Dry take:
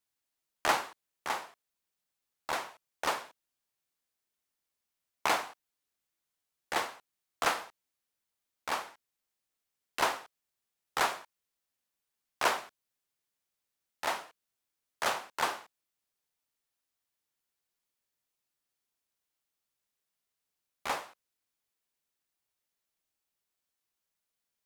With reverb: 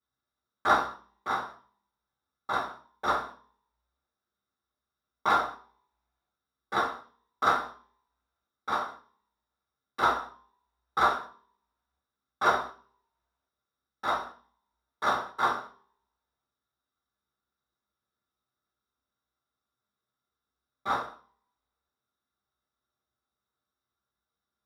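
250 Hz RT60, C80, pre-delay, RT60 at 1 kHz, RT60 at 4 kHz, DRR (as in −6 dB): 0.55 s, 15.5 dB, 3 ms, 0.40 s, 0.40 s, −12.0 dB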